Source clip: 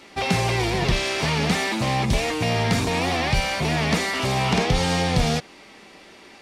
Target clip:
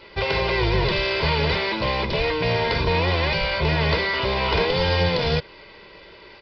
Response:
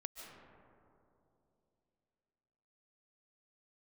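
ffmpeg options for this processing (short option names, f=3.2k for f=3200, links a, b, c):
-af "lowshelf=f=100:g=7.5,afftfilt=real='re*lt(hypot(re,im),0.794)':imag='im*lt(hypot(re,im),0.794)':win_size=1024:overlap=0.75,aresample=11025,acrusher=bits=5:mode=log:mix=0:aa=0.000001,aresample=44100,aecho=1:1:2:0.71"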